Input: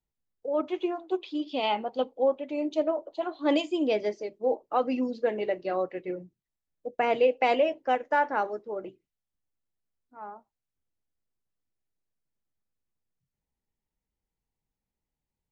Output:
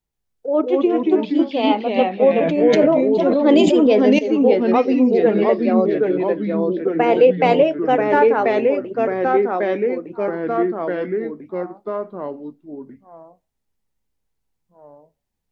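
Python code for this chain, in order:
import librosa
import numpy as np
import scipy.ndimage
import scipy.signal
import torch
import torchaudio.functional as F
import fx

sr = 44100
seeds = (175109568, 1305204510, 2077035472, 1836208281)

y = fx.dynamic_eq(x, sr, hz=350.0, q=0.77, threshold_db=-38.0, ratio=4.0, max_db=7)
y = fx.echo_pitch(y, sr, ms=128, semitones=-2, count=3, db_per_echo=-3.0)
y = fx.sustainer(y, sr, db_per_s=21.0, at=(2.38, 4.19))
y = y * librosa.db_to_amplitude(5.0)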